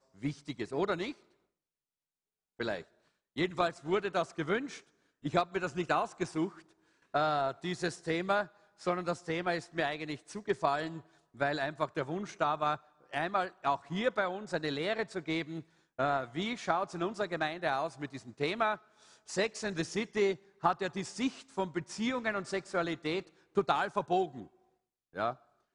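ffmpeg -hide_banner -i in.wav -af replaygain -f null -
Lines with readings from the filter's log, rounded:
track_gain = +13.7 dB
track_peak = 0.156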